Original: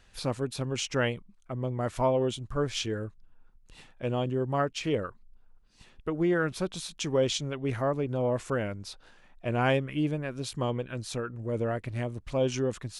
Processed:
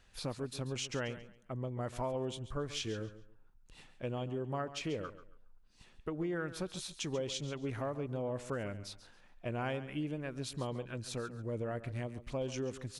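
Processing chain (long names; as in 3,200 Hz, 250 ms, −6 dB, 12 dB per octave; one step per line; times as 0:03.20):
downward compressor 4 to 1, threshold −29 dBFS, peak gain reduction 8 dB
on a send: repeating echo 138 ms, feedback 25%, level −14 dB
on the sum: level −5 dB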